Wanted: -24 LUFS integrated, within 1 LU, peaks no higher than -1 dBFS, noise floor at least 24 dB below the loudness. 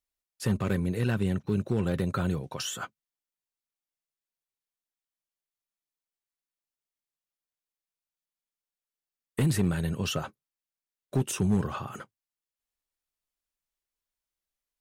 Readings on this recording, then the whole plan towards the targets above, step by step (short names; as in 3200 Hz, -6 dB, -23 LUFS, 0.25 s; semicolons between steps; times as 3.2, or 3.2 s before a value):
clipped 0.2%; flat tops at -18.5 dBFS; loudness -29.5 LUFS; peak -18.5 dBFS; loudness target -24.0 LUFS
-> clip repair -18.5 dBFS; gain +5.5 dB